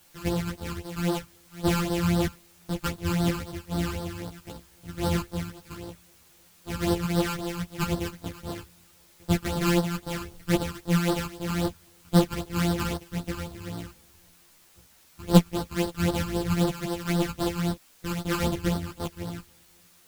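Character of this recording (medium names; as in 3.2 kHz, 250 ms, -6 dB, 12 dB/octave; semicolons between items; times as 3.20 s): a buzz of ramps at a fixed pitch in blocks of 256 samples; phasing stages 12, 3.8 Hz, lowest notch 590–2400 Hz; a quantiser's noise floor 10-bit, dither triangular; a shimmering, thickened sound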